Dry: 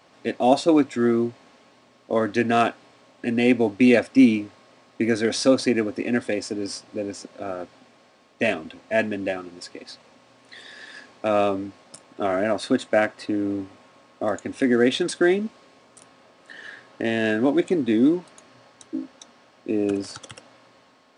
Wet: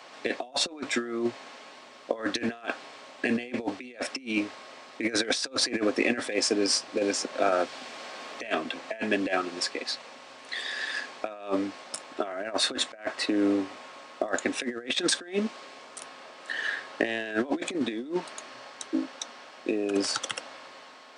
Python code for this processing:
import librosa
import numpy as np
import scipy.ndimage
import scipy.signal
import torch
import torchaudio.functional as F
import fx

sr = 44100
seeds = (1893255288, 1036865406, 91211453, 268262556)

y = fx.band_squash(x, sr, depth_pct=40, at=(6.97, 9.67))
y = fx.weighting(y, sr, curve='A')
y = fx.over_compress(y, sr, threshold_db=-31.0, ratio=-0.5)
y = y * librosa.db_to_amplitude(3.0)